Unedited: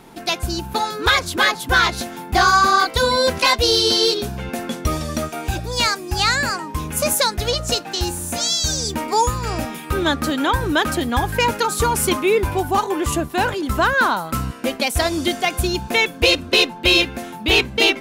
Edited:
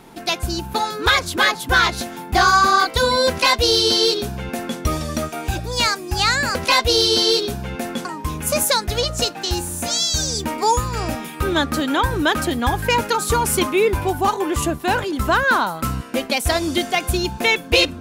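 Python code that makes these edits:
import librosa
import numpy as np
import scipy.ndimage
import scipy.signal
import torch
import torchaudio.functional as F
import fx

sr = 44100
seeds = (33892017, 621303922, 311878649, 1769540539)

y = fx.edit(x, sr, fx.duplicate(start_s=3.29, length_s=1.5, to_s=6.55), tone=tone)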